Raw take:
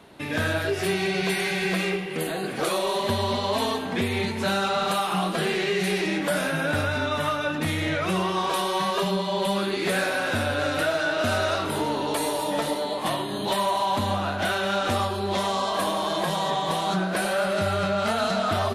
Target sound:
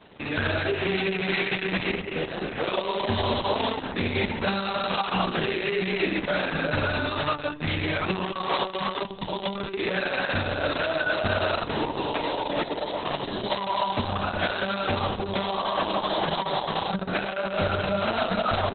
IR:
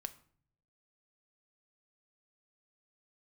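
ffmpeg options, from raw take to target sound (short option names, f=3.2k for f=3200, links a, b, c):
-af "equalizer=f=2.5k:w=5.3:g=2.5,aecho=1:1:136:0.0794" -ar 48000 -c:a libopus -b:a 6k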